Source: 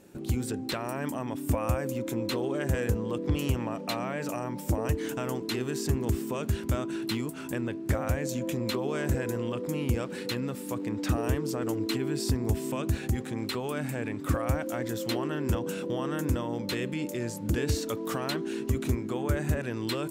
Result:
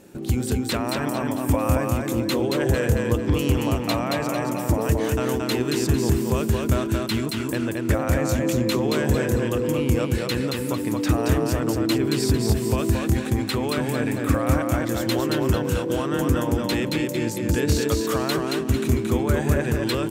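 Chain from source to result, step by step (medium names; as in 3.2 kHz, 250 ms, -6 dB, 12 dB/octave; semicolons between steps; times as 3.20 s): feedback delay 225 ms, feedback 34%, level -3 dB; trim +6 dB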